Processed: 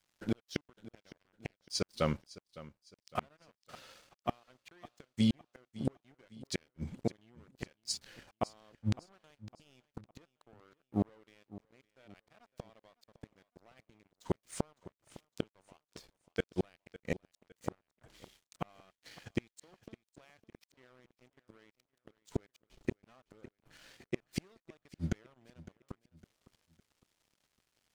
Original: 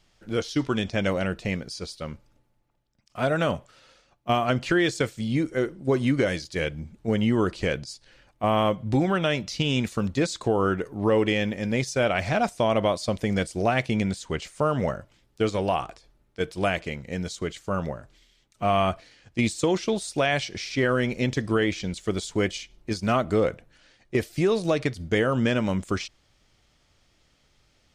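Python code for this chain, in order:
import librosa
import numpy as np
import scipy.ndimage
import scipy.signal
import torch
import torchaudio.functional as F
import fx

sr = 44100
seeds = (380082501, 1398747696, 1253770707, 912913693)

p1 = fx.low_shelf(x, sr, hz=70.0, db=-10.5)
p2 = fx.level_steps(p1, sr, step_db=13)
p3 = p1 + F.gain(torch.from_numpy(p2), -1.0).numpy()
p4 = fx.gate_flip(p3, sr, shuts_db=-20.0, range_db=-39)
p5 = np.sign(p4) * np.maximum(np.abs(p4) - 10.0 ** (-59.5 / 20.0), 0.0)
p6 = fx.echo_feedback(p5, sr, ms=558, feedback_pct=39, wet_db=-18)
y = F.gain(torch.from_numpy(p6), 1.5).numpy()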